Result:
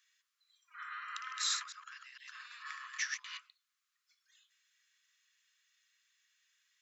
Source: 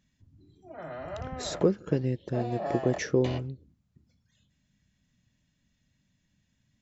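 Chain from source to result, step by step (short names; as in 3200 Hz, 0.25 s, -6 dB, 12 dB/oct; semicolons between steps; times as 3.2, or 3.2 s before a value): 1.16–3.39 reverse delay 0.113 s, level -3 dB; compressor 12:1, threshold -29 dBFS, peak gain reduction 12.5 dB; steep high-pass 1100 Hz 96 dB/oct; gain +4.5 dB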